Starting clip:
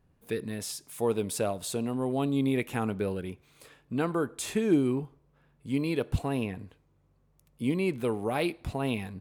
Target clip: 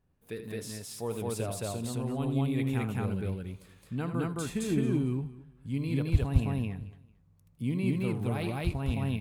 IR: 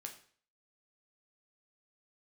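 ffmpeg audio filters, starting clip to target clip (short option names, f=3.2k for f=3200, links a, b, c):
-filter_complex "[0:a]asplit=2[a][b];[b]aecho=0:1:223|446:0.112|0.0281[c];[a][c]amix=inputs=2:normalize=0,asubboost=boost=5:cutoff=170,asplit=2[d][e];[e]aecho=0:1:78.72|215.7:0.316|1[f];[d][f]amix=inputs=2:normalize=0,volume=-7dB"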